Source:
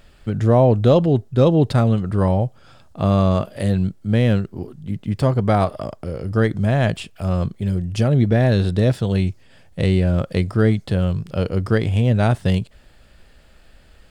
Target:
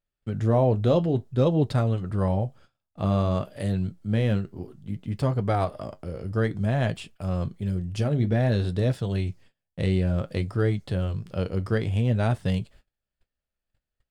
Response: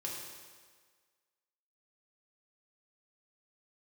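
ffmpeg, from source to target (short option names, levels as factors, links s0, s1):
-af "agate=range=0.0282:threshold=0.00891:ratio=16:detection=peak,flanger=delay=6.7:depth=4.4:regen=-61:speed=0.56:shape=sinusoidal,volume=0.708"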